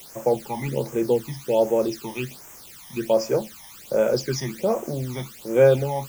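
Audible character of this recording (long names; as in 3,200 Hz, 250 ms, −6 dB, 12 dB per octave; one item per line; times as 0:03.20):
a quantiser's noise floor 8 bits, dither triangular
phaser sweep stages 12, 1.3 Hz, lowest notch 440–4,200 Hz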